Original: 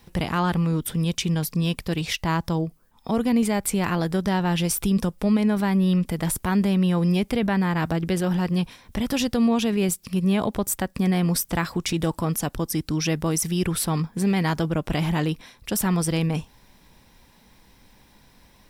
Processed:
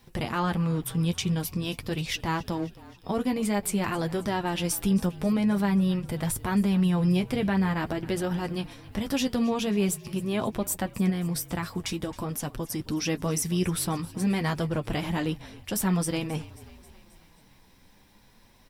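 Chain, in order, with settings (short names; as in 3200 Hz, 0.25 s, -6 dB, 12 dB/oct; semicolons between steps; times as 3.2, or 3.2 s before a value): 11.09–12.8 compressor, threshold -23 dBFS, peak gain reduction 5.5 dB; flange 0.48 Hz, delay 7.6 ms, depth 4 ms, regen -31%; frequency-shifting echo 0.268 s, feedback 61%, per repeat -40 Hz, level -19.5 dB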